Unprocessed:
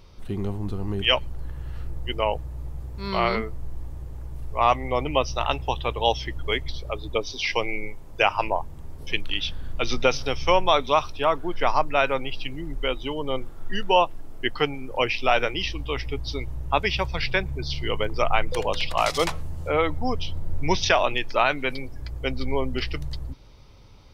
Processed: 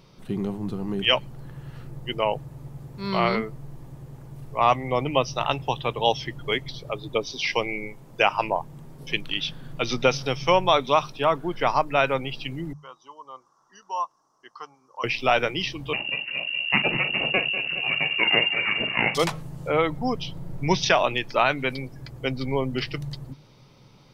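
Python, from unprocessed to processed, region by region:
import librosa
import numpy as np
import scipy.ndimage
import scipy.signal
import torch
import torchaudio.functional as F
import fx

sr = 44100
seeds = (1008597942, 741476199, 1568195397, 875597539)

y = fx.chain(x, sr, fx.double_bandpass(hz=2500.0, octaves=2.4),
    fx.peak_eq(hz=2700.0, db=14.5, octaves=0.24), at=(12.73, 15.04))
y = fx.chain(y, sr, fx.lower_of_two(delay_ms=0.37),
    fx.echo_multitap(ms=(44, 194, 224, 415), db=(-11.0, -13.5, -15.5, -16.0)),
    fx.freq_invert(carrier_hz=2800), at=(15.93, 19.15))
y = fx.low_shelf_res(y, sr, hz=100.0, db=-11.0, q=3.0)
y = fx.hum_notches(y, sr, base_hz=50, count=3)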